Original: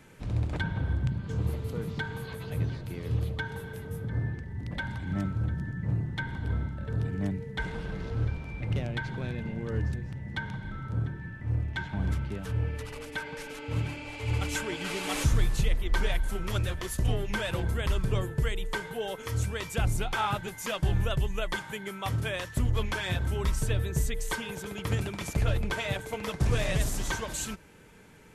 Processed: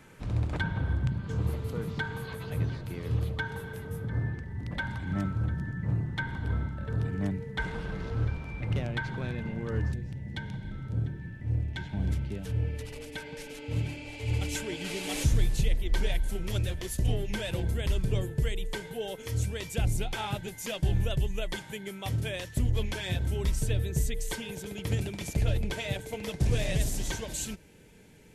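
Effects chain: peaking EQ 1.2 kHz +2.5 dB 0.93 oct, from 9.93 s -12 dB

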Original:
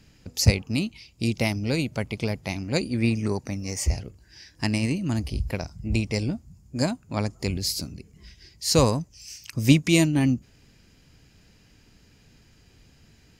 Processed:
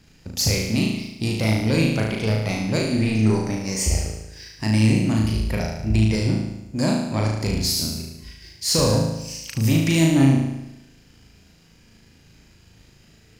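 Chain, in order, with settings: peak limiter -14.5 dBFS, peak gain reduction 9.5 dB; waveshaping leveller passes 1; on a send: flutter echo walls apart 6.3 m, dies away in 0.91 s

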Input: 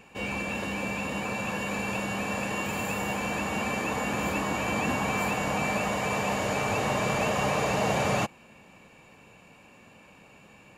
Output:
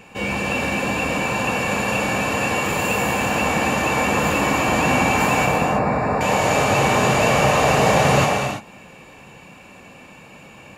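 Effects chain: 3.66–4.08 s: short-mantissa float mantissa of 6-bit; 5.45–6.21 s: boxcar filter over 14 samples; gated-style reverb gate 360 ms flat, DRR 0 dB; trim +7.5 dB

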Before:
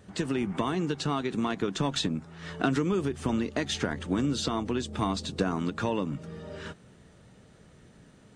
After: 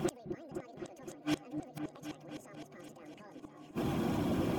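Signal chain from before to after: coarse spectral quantiser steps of 15 dB; tilt shelf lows +4.5 dB; in parallel at 0 dB: compression, threshold -35 dBFS, peak gain reduction 15.5 dB; on the sum: peak limiter -20 dBFS, peak gain reduction 10.5 dB; reverse; upward compressor, threshold -32 dBFS; reverse; comb of notches 240 Hz; inverted gate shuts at -27 dBFS, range -31 dB; wide varispeed 1.82×; delay with an opening low-pass 257 ms, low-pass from 400 Hz, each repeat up 2 oct, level -6 dB; saturation -28.5 dBFS, distortion -24 dB; trim +7.5 dB

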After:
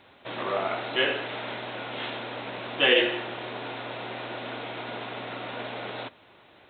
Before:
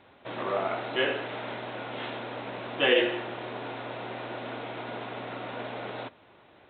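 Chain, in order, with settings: treble shelf 2.5 kHz +8.5 dB

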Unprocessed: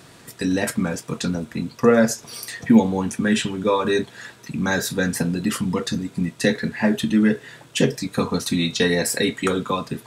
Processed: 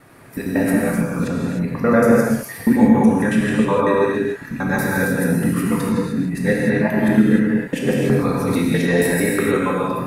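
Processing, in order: time reversed locally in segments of 92 ms; high-order bell 4.9 kHz -12.5 dB; gated-style reverb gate 330 ms flat, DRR -4 dB; trim -1 dB

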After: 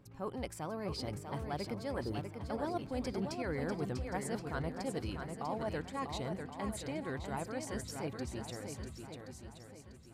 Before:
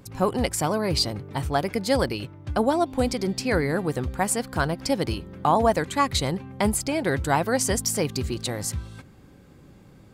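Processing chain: Doppler pass-by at 3.41 s, 9 m/s, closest 6.9 m; spectral selection erased 1.93–2.14 s, 1.9–6.2 kHz; reverse; compression 6:1, threshold -37 dBFS, peak gain reduction 17.5 dB; reverse; treble shelf 4.1 kHz -8.5 dB; shuffle delay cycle 1075 ms, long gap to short 1.5:1, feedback 32%, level -6 dB; trim +1.5 dB

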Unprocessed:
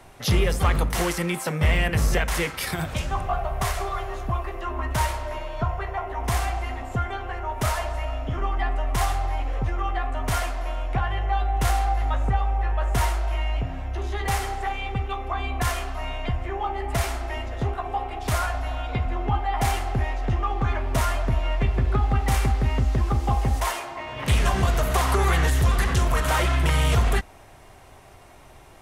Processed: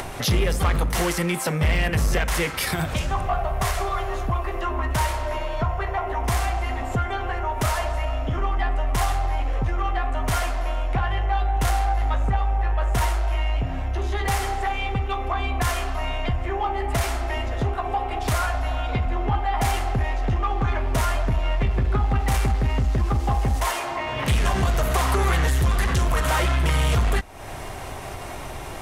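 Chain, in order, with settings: in parallel at +1.5 dB: compression, threshold -32 dBFS, peak gain reduction 15.5 dB; on the sum: saturation -13.5 dBFS, distortion -19 dB; upward compressor, threshold -24 dBFS

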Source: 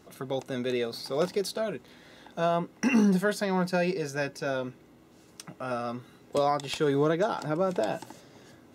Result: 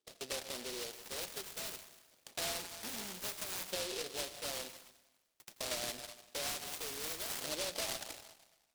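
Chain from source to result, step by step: tone controls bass -6 dB, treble +5 dB; saturation -30 dBFS, distortion -8 dB; LFO band-pass saw up 0.54 Hz 540–1700 Hz; gate -57 dBFS, range -25 dB; on a send at -11.5 dB: reverberation RT60 1.1 s, pre-delay 77 ms; on the sum: compression, threshold -39 dBFS, peak gain reduction 7 dB; delay time shaken by noise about 3.9 kHz, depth 0.31 ms; trim +3 dB

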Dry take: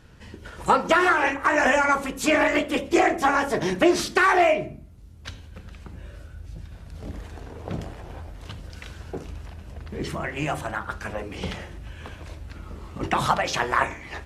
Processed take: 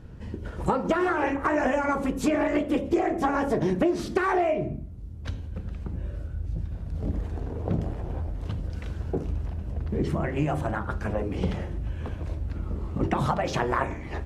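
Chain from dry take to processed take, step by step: tilt shelf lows +8 dB, about 890 Hz; compression 5:1, threshold -21 dBFS, peak gain reduction 11 dB

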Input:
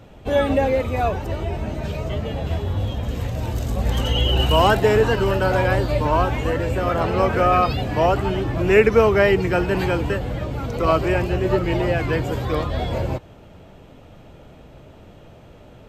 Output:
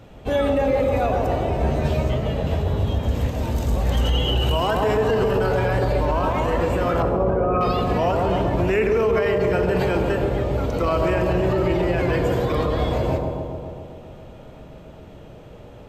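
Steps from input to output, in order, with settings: 7.02–7.61 s: resonances exaggerated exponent 2; bucket-brigade echo 134 ms, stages 1024, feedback 71%, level -4 dB; plate-style reverb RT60 1.7 s, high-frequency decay 0.95×, DRR 8 dB; peak limiter -12 dBFS, peak gain reduction 11.5 dB; 1.59–2.11 s: doubling 13 ms -2 dB

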